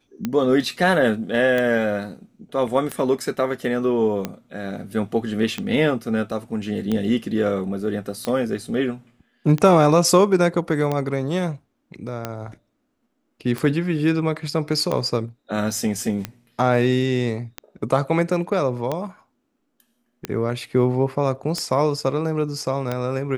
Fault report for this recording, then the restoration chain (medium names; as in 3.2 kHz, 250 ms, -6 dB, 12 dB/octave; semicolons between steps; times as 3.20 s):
tick 45 rpm -11 dBFS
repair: de-click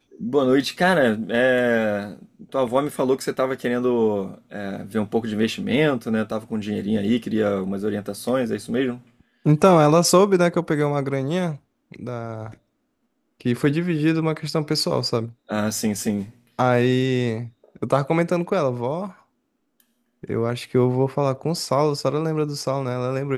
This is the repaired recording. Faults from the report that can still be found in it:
nothing left